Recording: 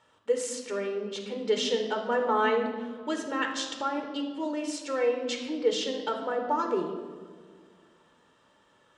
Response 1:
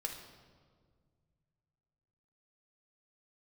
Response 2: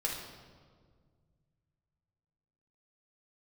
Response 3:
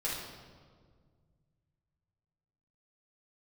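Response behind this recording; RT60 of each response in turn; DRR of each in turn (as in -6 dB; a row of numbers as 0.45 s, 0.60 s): 1; 1.8 s, 1.8 s, 1.8 s; 2.5 dB, -2.0 dB, -7.5 dB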